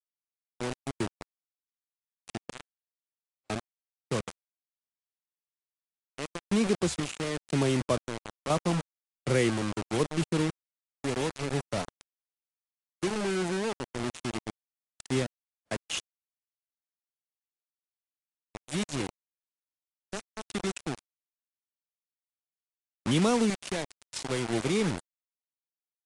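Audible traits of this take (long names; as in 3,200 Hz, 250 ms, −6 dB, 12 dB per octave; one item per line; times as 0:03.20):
sample-and-hold tremolo 2 Hz, depth 90%
a quantiser's noise floor 6 bits, dither none
AAC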